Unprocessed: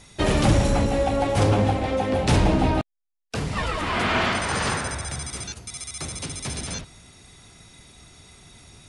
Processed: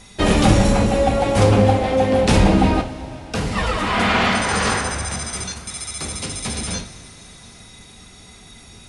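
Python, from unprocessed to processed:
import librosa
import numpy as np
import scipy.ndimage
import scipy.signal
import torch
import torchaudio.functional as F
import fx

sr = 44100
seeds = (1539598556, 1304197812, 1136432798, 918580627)

y = fx.rev_double_slope(x, sr, seeds[0], early_s=0.36, late_s=4.9, knee_db=-19, drr_db=4.5)
y = F.gain(torch.from_numpy(y), 4.0).numpy()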